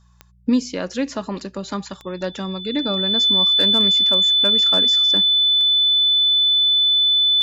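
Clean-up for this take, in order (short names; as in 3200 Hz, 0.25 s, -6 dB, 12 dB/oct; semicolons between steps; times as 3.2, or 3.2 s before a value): clip repair -9 dBFS; de-click; de-hum 60.2 Hz, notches 3; notch 3500 Hz, Q 30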